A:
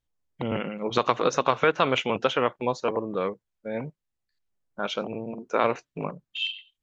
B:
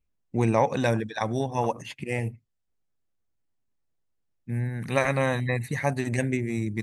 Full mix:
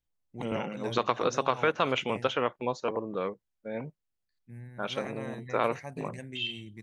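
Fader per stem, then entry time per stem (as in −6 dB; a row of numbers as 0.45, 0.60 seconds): −4.5, −16.5 decibels; 0.00, 0.00 seconds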